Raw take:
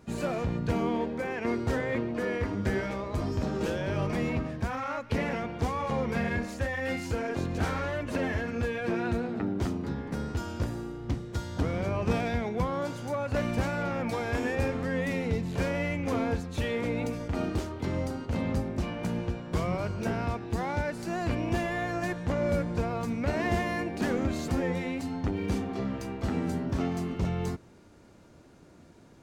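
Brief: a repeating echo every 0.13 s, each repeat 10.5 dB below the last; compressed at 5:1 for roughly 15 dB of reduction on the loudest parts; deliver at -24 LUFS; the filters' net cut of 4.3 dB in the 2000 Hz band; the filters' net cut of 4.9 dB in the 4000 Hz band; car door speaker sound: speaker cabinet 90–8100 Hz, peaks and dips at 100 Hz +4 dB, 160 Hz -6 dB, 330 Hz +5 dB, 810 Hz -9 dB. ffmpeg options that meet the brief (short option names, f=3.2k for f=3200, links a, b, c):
-af "equalizer=f=2k:t=o:g=-4,equalizer=f=4k:t=o:g=-5,acompressor=threshold=-41dB:ratio=5,highpass=90,equalizer=f=100:t=q:w=4:g=4,equalizer=f=160:t=q:w=4:g=-6,equalizer=f=330:t=q:w=4:g=5,equalizer=f=810:t=q:w=4:g=-9,lowpass=f=8.1k:w=0.5412,lowpass=f=8.1k:w=1.3066,aecho=1:1:130|260|390:0.299|0.0896|0.0269,volume=19.5dB"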